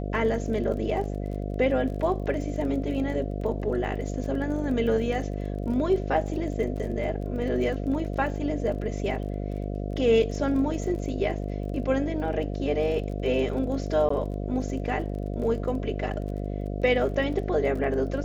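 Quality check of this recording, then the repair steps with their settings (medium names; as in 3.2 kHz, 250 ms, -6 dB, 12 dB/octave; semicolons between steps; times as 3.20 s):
buzz 50 Hz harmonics 14 -31 dBFS
crackle 27 per s -36 dBFS
14.09–14.10 s: dropout 14 ms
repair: de-click; de-hum 50 Hz, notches 14; interpolate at 14.09 s, 14 ms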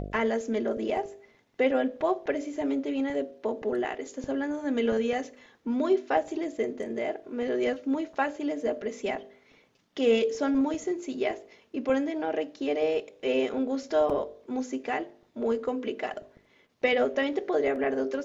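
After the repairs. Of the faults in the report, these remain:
nothing left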